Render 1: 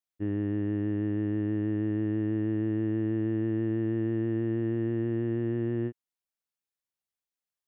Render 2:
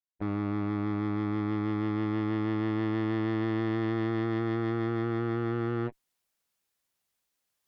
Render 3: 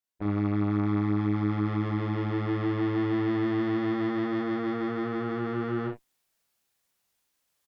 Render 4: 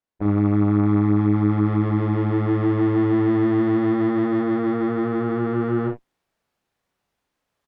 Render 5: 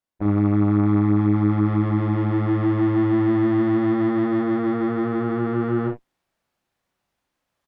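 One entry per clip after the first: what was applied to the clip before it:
reversed playback; upward compression, threshold −49 dBFS; reversed playback; harmonic generator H 7 −15 dB, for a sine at −20.5 dBFS
in parallel at −3 dB: brickwall limiter −31 dBFS, peak gain reduction 11.5 dB; on the sum: ambience of single reflections 39 ms −3 dB, 67 ms −10.5 dB; level −2 dB
low-pass filter 1,100 Hz 6 dB per octave; level +8.5 dB
notch filter 440 Hz, Q 12

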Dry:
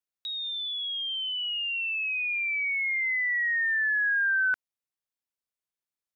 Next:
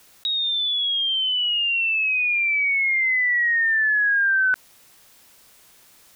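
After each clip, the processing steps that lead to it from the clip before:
envelope flattener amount 50%
level +5.5 dB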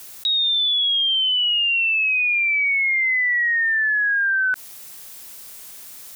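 high-shelf EQ 5,500 Hz +10 dB
brickwall limiter −22 dBFS, peak gain reduction 8.5 dB
level +5.5 dB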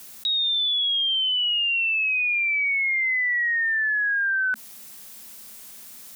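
parametric band 220 Hz +13.5 dB 0.25 octaves
level −3.5 dB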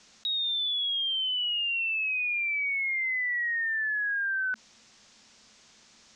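Butterworth low-pass 6,600 Hz 36 dB per octave
level −6 dB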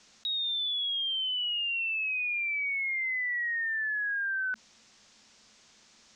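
mains-hum notches 60/120/180/240 Hz
level −2 dB

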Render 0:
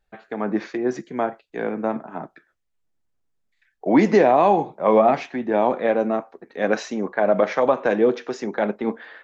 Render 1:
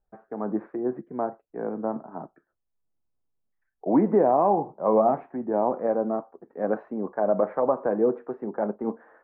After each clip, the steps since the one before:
low-pass filter 1,200 Hz 24 dB per octave
level −4.5 dB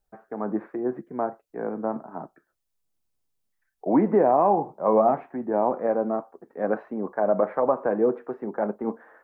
high-shelf EQ 2,000 Hz +10 dB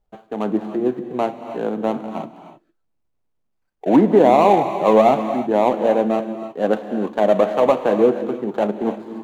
running median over 25 samples
reverb whose tail is shaped and stops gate 340 ms rising, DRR 9 dB
level +7 dB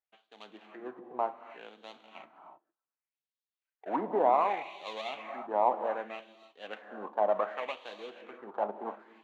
auto-filter band-pass sine 0.66 Hz 900–3,900 Hz
level −4.5 dB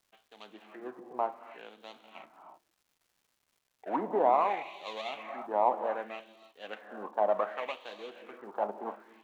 surface crackle 370 per second −60 dBFS

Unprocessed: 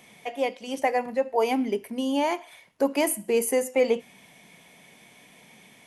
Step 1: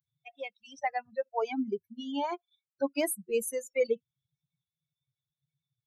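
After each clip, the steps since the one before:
spectral dynamics exaggerated over time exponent 3
level −2 dB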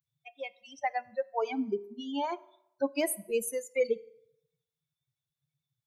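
convolution reverb RT60 0.80 s, pre-delay 3 ms, DRR 16.5 dB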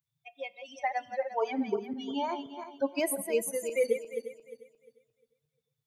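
feedback delay that plays each chunk backwards 176 ms, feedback 51%, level −7.5 dB

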